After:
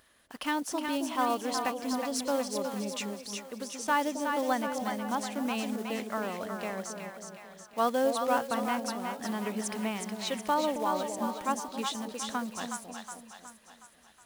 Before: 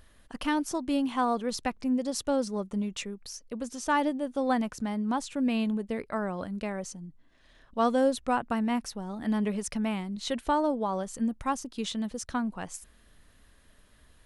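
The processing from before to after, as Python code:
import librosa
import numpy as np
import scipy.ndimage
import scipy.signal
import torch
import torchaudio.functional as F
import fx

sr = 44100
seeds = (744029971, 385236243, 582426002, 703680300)

p1 = fx.block_float(x, sr, bits=5)
p2 = fx.highpass(p1, sr, hz=460.0, slope=6)
y = p2 + fx.echo_split(p2, sr, split_hz=690.0, low_ms=271, high_ms=367, feedback_pct=52, wet_db=-5, dry=0)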